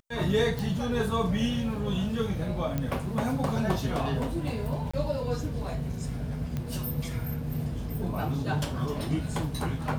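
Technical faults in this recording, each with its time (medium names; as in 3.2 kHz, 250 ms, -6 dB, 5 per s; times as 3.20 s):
0.59 s: pop
2.78 s: pop -17 dBFS
4.91–4.93 s: dropout 25 ms
6.57 s: pop -20 dBFS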